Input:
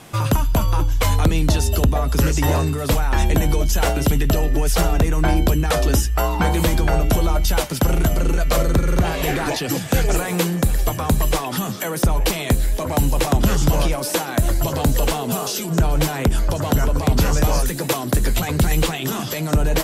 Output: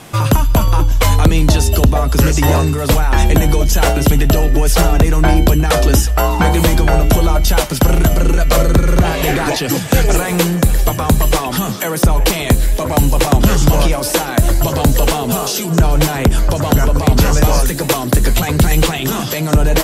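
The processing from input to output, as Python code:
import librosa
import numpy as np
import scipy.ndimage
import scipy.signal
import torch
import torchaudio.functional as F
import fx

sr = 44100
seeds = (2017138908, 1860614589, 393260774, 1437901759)

y = x + 10.0 ** (-22.5 / 20.0) * np.pad(x, (int(360 * sr / 1000.0), 0))[:len(x)]
y = F.gain(torch.from_numpy(y), 6.0).numpy()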